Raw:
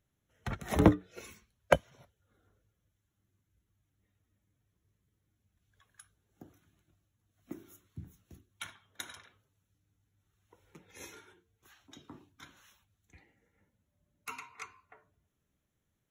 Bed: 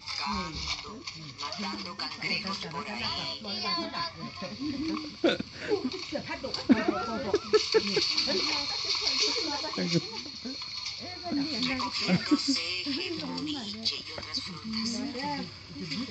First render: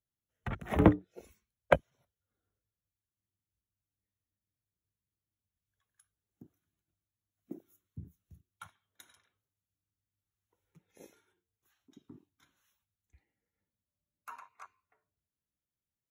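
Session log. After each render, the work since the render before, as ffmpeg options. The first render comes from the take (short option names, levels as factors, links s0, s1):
-af "afwtdn=0.00708,highshelf=f=9700:g=10.5"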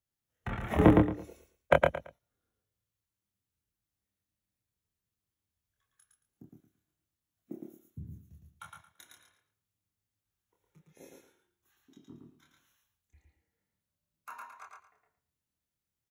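-filter_complex "[0:a]asplit=2[s0][s1];[s1]adelay=26,volume=0.668[s2];[s0][s2]amix=inputs=2:normalize=0,aecho=1:1:112|224|336:0.708|0.163|0.0375"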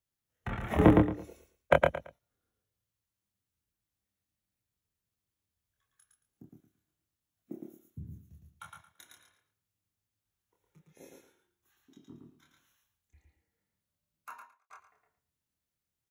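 -filter_complex "[0:a]asplit=2[s0][s1];[s0]atrim=end=14.7,asetpts=PTS-STARTPTS,afade=t=out:st=14.3:d=0.4:c=qua[s2];[s1]atrim=start=14.7,asetpts=PTS-STARTPTS,afade=t=in:d=0.004:c=hsin[s3];[s2][s3]concat=n=2:v=0:a=1"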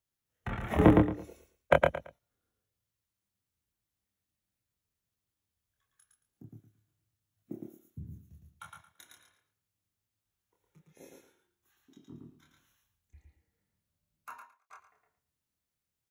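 -filter_complex "[0:a]asettb=1/sr,asplit=3[s0][s1][s2];[s0]atrim=end=6.444[s3];[s1]atrim=start=6.44:end=7.68,asetpts=PTS-STARTPTS,afade=t=in:d=0.004:c=qsin,afade=t=out:st=1.236:d=0.004:c=qsin,equalizer=f=110:w=2.1:g=13.5[s4];[s2]atrim=start=7.676[s5];[s3][s4]acrossfade=d=0.004:c1=hsin:c2=qsin[s6];[s6][s5]acrossfade=d=0.004:c1=qsin:c2=hsin,asettb=1/sr,asplit=3[s7][s8][s9];[s7]atrim=end=12.124[s10];[s8]atrim=start=12.12:end=14.39,asetpts=PTS-STARTPTS,afade=t=in:d=0.004:c=qsin,afade=t=out:st=2.266:d=0.004:c=qsin,lowshelf=f=210:g=7[s11];[s9]atrim=start=14.386[s12];[s10][s11]acrossfade=d=0.004:c1=hsin:c2=qsin[s13];[s13][s12]acrossfade=d=0.004:c1=qsin:c2=hsin"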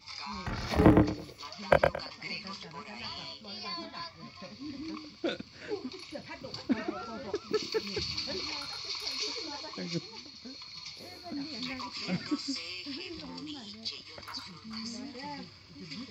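-filter_complex "[1:a]volume=0.398[s0];[0:a][s0]amix=inputs=2:normalize=0"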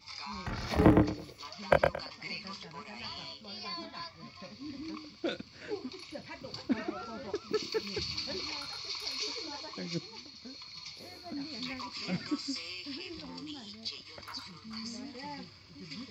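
-af "volume=0.841"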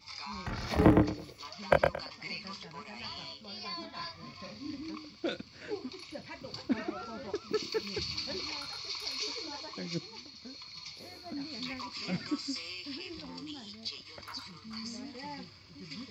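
-filter_complex "[0:a]asettb=1/sr,asplit=3[s0][s1][s2];[s0]atrim=end=3.924[s3];[s1]atrim=start=3.92:end=4.75,asetpts=PTS-STARTPTS,afade=t=in:d=0.004:c=qsin,afade=t=out:st=0.826:d=0.004:c=qsin,asplit=2[s4][s5];[s5]adelay=42,volume=0.794[s6];[s4][s6]amix=inputs=2:normalize=0,atrim=end_sample=36603[s7];[s2]atrim=start=4.746[s8];[s3][s7]acrossfade=d=0.004:c1=hsin:c2=qsin[s9];[s9][s8]acrossfade=d=0.004:c1=qsin:c2=hsin"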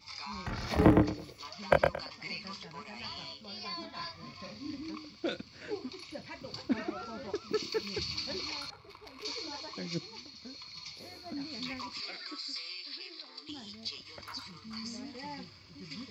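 -filter_complex "[0:a]asettb=1/sr,asplit=3[s0][s1][s2];[s0]atrim=end=8.704[s3];[s1]atrim=start=8.7:end=9.25,asetpts=PTS-STARTPTS,afade=t=in:d=0.004:c=qsin,afade=t=out:st=0.546:d=0.004:c=qsin,adynamicsmooth=sensitivity=3:basefreq=900[s4];[s2]atrim=start=9.246[s5];[s3][s4]acrossfade=d=0.004:c1=hsin:c2=qsin[s6];[s6][s5]acrossfade=d=0.004:c1=qsin:c2=hsin,asettb=1/sr,asplit=3[s7][s8][s9];[s7]atrim=end=12.004[s10];[s8]atrim=start=12:end=13.49,asetpts=PTS-STARTPTS,afade=t=in:d=0.004:c=qsin,afade=t=out:st=1.486:d=0.004:c=qsin,highpass=f=440:w=0.5412,highpass=f=440:w=1.3066,equalizer=f=550:t=q:w=4:g=-9,equalizer=f=920:t=q:w=4:g=-10,equalizer=f=2900:t=q:w=4:g=-7,equalizer=f=4100:t=q:w=4:g=7,equalizer=f=6200:t=q:w=4:g=-8,lowpass=f=7300:w=0.5412,lowpass=f=7300:w=1.3066[s11];[s9]atrim=start=13.486[s12];[s10][s11]acrossfade=d=0.004:c1=hsin:c2=qsin[s13];[s13][s12]acrossfade=d=0.004:c1=qsin:c2=hsin"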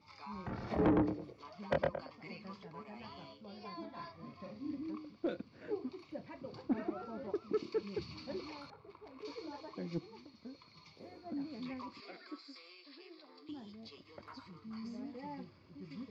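-af "bandpass=f=340:t=q:w=0.53:csg=0,asoftclip=type=tanh:threshold=0.0596"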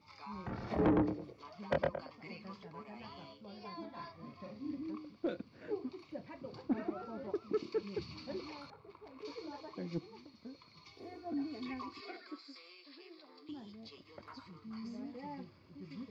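-filter_complex "[0:a]asettb=1/sr,asplit=3[s0][s1][s2];[s0]atrim=end=10.864[s3];[s1]atrim=start=10.86:end=12.2,asetpts=PTS-STARTPTS,afade=t=in:d=0.004:c=qsin,afade=t=out:st=1.336:d=0.004:c=qsin,aecho=1:1:2.7:0.92,atrim=end_sample=59094[s4];[s2]atrim=start=12.196[s5];[s3][s4]acrossfade=d=0.004:c1=hsin:c2=qsin[s6];[s6][s5]acrossfade=d=0.004:c1=qsin:c2=hsin"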